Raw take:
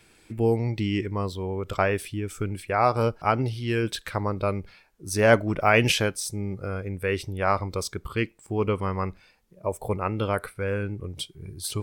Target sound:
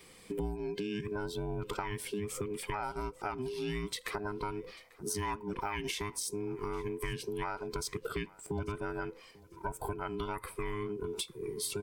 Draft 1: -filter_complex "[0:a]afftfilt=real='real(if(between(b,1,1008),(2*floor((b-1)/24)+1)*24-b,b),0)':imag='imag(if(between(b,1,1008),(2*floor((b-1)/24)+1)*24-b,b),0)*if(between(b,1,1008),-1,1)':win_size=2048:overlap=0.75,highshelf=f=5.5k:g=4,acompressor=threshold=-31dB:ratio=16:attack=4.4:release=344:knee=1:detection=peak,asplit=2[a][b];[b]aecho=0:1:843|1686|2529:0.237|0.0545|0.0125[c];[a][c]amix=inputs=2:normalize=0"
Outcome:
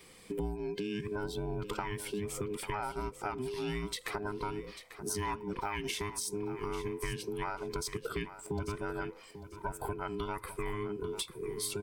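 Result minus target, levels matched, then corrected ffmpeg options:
echo-to-direct +10 dB
-filter_complex "[0:a]afftfilt=real='real(if(between(b,1,1008),(2*floor((b-1)/24)+1)*24-b,b),0)':imag='imag(if(between(b,1,1008),(2*floor((b-1)/24)+1)*24-b,b),0)*if(between(b,1,1008),-1,1)':win_size=2048:overlap=0.75,highshelf=f=5.5k:g=4,acompressor=threshold=-31dB:ratio=16:attack=4.4:release=344:knee=1:detection=peak,asplit=2[a][b];[b]aecho=0:1:843|1686:0.075|0.0172[c];[a][c]amix=inputs=2:normalize=0"

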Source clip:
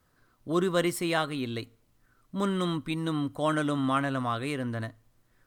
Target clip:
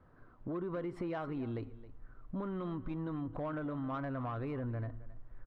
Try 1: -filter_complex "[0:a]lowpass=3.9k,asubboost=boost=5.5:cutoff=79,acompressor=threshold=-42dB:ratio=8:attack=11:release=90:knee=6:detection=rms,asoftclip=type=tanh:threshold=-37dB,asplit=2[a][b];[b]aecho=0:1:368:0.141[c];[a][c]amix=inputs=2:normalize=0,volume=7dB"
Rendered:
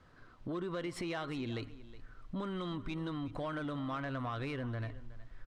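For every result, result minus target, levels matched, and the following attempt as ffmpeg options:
4000 Hz band +14.5 dB; echo 0.1 s late
-filter_complex "[0:a]lowpass=1.2k,asubboost=boost=5.5:cutoff=79,acompressor=threshold=-42dB:ratio=8:attack=11:release=90:knee=6:detection=rms,asoftclip=type=tanh:threshold=-37dB,asplit=2[a][b];[b]aecho=0:1:368:0.141[c];[a][c]amix=inputs=2:normalize=0,volume=7dB"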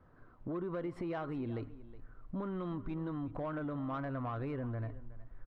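echo 0.1 s late
-filter_complex "[0:a]lowpass=1.2k,asubboost=boost=5.5:cutoff=79,acompressor=threshold=-42dB:ratio=8:attack=11:release=90:knee=6:detection=rms,asoftclip=type=tanh:threshold=-37dB,asplit=2[a][b];[b]aecho=0:1:268:0.141[c];[a][c]amix=inputs=2:normalize=0,volume=7dB"

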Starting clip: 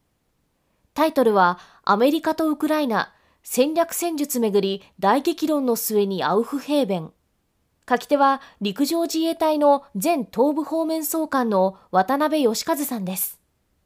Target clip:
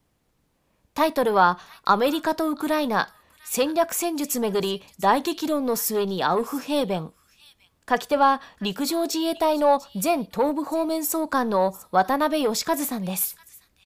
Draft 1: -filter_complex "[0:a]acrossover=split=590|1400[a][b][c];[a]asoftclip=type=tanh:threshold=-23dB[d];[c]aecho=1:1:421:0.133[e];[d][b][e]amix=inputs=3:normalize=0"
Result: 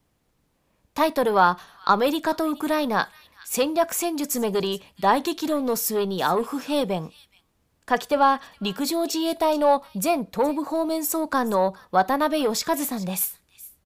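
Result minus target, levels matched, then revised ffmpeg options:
echo 0.276 s early
-filter_complex "[0:a]acrossover=split=590|1400[a][b][c];[a]asoftclip=type=tanh:threshold=-23dB[d];[c]aecho=1:1:697:0.133[e];[d][b][e]amix=inputs=3:normalize=0"

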